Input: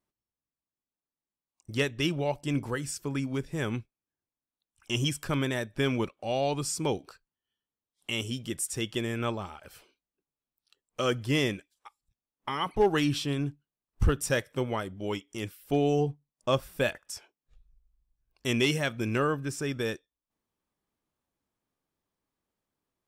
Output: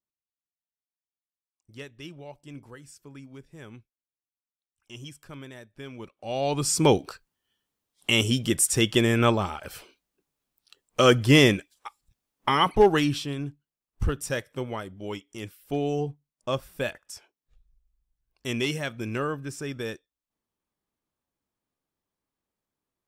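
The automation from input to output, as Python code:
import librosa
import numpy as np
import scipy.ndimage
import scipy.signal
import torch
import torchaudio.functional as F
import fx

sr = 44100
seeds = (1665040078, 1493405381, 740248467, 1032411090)

y = fx.gain(x, sr, db=fx.line((5.94, -13.5), (6.26, -2.5), (6.83, 10.0), (12.58, 10.0), (13.32, -2.0)))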